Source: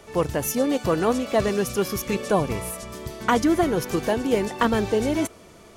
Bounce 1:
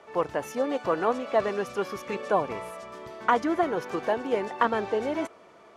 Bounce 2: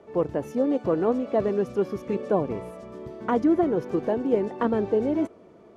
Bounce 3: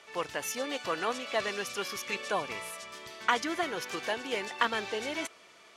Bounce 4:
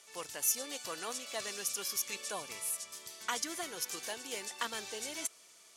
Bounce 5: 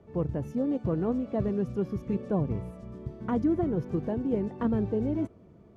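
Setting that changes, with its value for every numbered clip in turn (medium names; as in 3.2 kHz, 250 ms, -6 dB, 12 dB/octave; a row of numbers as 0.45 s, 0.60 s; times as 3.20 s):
band-pass filter, frequency: 980 Hz, 370 Hz, 2.6 kHz, 7.7 kHz, 130 Hz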